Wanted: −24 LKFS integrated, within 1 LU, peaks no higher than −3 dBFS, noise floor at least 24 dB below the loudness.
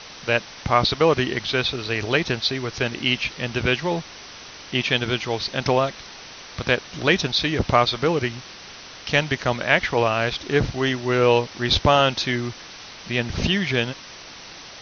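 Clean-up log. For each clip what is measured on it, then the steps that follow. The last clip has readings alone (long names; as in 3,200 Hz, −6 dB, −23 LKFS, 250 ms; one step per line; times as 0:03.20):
background noise floor −41 dBFS; target noise floor −46 dBFS; integrated loudness −22.0 LKFS; sample peak −1.5 dBFS; target loudness −24.0 LKFS
→ broadband denoise 6 dB, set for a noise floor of −41 dBFS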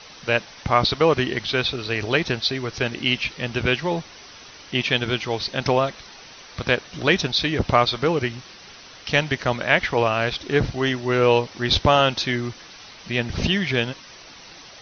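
background noise floor −44 dBFS; target noise floor −46 dBFS
→ broadband denoise 6 dB, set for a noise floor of −44 dBFS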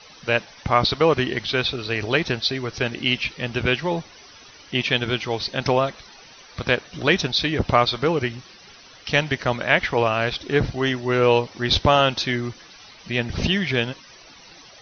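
background noise floor −47 dBFS; integrated loudness −22.0 LKFS; sample peak −1.5 dBFS; target loudness −24.0 LKFS
→ level −2 dB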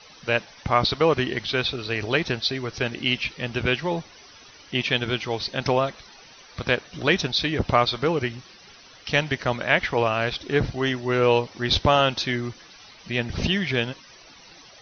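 integrated loudness −24.0 LKFS; sample peak −3.5 dBFS; background noise floor −49 dBFS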